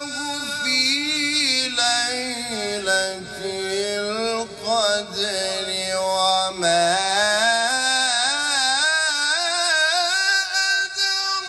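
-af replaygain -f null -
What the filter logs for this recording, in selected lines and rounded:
track_gain = +0.3 dB
track_peak = 0.352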